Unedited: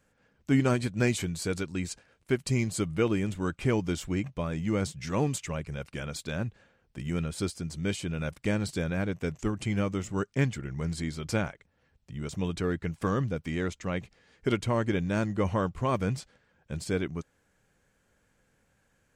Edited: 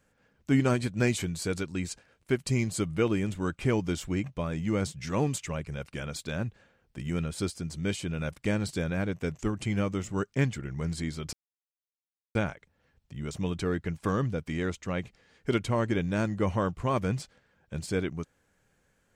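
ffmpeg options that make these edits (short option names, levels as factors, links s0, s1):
-filter_complex "[0:a]asplit=2[s0][s1];[s0]atrim=end=11.33,asetpts=PTS-STARTPTS,afade=t=out:st=11.326:d=0.004:c=hsin,apad=pad_dur=1.02[s2];[s1]atrim=start=11.33,asetpts=PTS-STARTPTS,afade=t=in:d=0.004:c=hsin[s3];[s2][s3]concat=n=2:v=0:a=1"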